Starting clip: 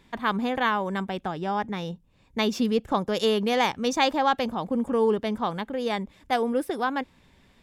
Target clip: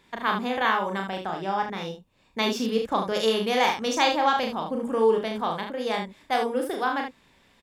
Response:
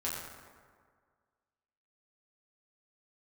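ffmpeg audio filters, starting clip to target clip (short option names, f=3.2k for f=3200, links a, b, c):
-filter_complex "[0:a]lowshelf=f=220:g=-10.5,asplit=2[a][b];[b]aecho=0:1:36|74:0.631|0.447[c];[a][c]amix=inputs=2:normalize=0"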